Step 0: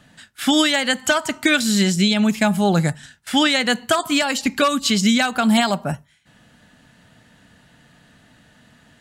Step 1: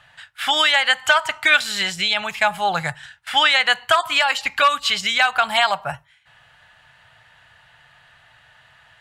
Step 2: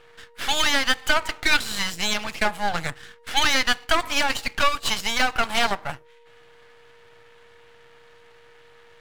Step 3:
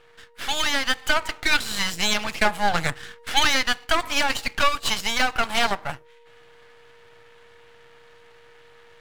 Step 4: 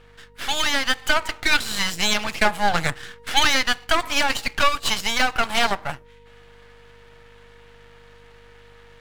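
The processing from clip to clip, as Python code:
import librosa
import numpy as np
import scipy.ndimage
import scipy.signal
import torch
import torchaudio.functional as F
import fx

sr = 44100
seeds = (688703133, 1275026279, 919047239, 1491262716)

y1 = fx.curve_eq(x, sr, hz=(130.0, 230.0, 830.0, 2900.0, 6200.0), db=(0, -22, 9, 9, -2))
y1 = y1 * 10.0 ** (-4.5 / 20.0)
y2 = y1 + 10.0 ** (-47.0 / 20.0) * np.sin(2.0 * np.pi * 470.0 * np.arange(len(y1)) / sr)
y2 = np.maximum(y2, 0.0)
y3 = fx.rider(y2, sr, range_db=10, speed_s=0.5)
y4 = fx.add_hum(y3, sr, base_hz=50, snr_db=31)
y4 = y4 * 10.0 ** (1.5 / 20.0)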